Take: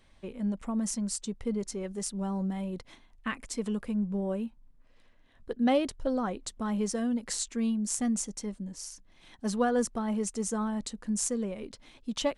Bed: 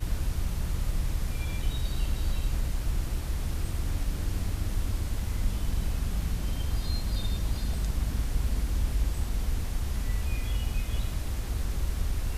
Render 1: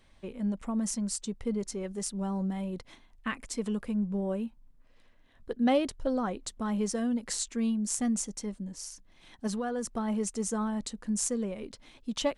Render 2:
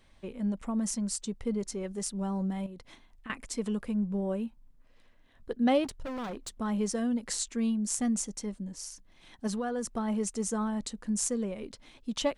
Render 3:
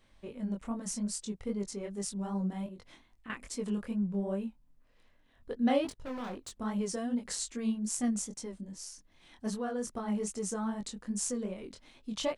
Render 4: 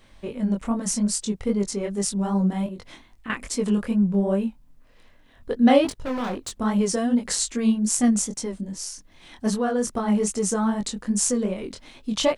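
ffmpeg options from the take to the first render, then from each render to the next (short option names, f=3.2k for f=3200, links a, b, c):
-filter_complex "[0:a]asettb=1/sr,asplit=3[a][b][c];[a]atrim=end=9.474[d];[b]atrim=start=9.47:end=9.96,asetpts=PTS-STARTPTS,afade=t=in:d=0.004:c=qsin,afade=t=out:st=0.486:d=0.004:c=qsin,acompressor=threshold=-29dB:ratio=6:attack=3.2:release=140:knee=1:detection=peak[e];[c]atrim=start=9.956[f];[d][e]acrossfade=d=0.004:c1=hsin:c2=qsin[g];[g][f]acrossfade=d=0.004:c1=qsin:c2=hsin"
-filter_complex "[0:a]asettb=1/sr,asplit=3[a][b][c];[a]atrim=end=2.664[d];[b]atrim=start=2.66:end=3.3,asetpts=PTS-STARTPTS,afade=t=in:d=0.004:c=qsin,afade=t=out:st=0.636:d=0.004:c=qsin,acompressor=threshold=-41dB:ratio=10:attack=3.2:release=140:knee=1:detection=peak[e];[c]atrim=start=3.296[f];[d][e]acrossfade=d=0.004:c1=hsin:c2=qsin[g];[g][f]acrossfade=d=0.004:c1=qsin:c2=hsin,asettb=1/sr,asplit=3[h][i][j];[h]atrim=end=5.844[k];[i]atrim=start=5.84:end=6.54,asetpts=PTS-STARTPTS,afade=t=in:d=0.004:c=qsin,afade=t=out:st=0.696:d=0.004:c=qsin,asoftclip=type=hard:threshold=-34.5dB[l];[j]atrim=start=6.536[m];[k][l]acrossfade=d=0.004:c1=hsin:c2=qsin[n];[n][m]acrossfade=d=0.004:c1=qsin:c2=hsin"
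-af "flanger=delay=20:depth=5:speed=2.5"
-af "volume=11.5dB"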